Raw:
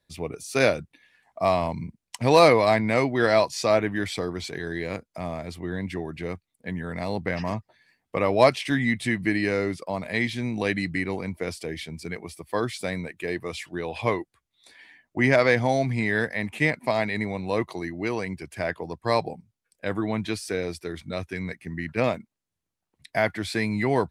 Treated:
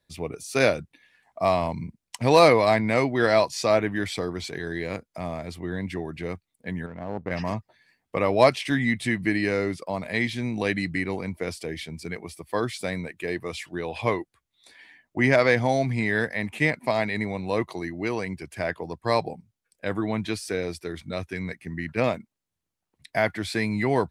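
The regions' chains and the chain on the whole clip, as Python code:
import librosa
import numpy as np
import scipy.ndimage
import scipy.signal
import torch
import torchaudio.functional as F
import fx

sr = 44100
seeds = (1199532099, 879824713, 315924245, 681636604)

y = fx.chain(x, sr, fx.lowpass(hz=1100.0, slope=12),
    fx.power_curve(exponent=1.4), at=(6.86, 7.31))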